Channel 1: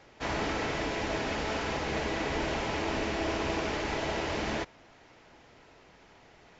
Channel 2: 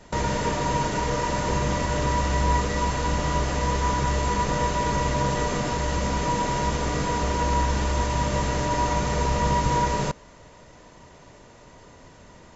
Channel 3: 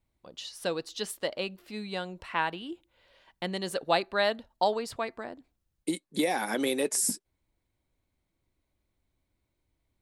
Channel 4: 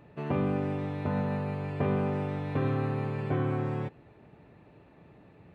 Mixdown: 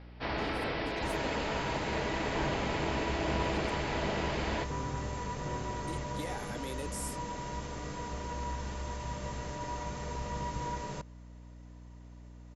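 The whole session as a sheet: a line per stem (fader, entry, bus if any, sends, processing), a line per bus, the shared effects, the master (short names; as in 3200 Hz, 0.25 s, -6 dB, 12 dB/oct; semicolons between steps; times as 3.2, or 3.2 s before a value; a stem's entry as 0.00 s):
-2.5 dB, 0.00 s, no send, steep low-pass 5200 Hz 72 dB/oct
-14.5 dB, 0.90 s, no send, dry
-13.5 dB, 0.00 s, muted 3.7–5.33, no send, dry
-12.0 dB, 2.15 s, no send, LPF 9600 Hz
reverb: off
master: hum 60 Hz, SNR 14 dB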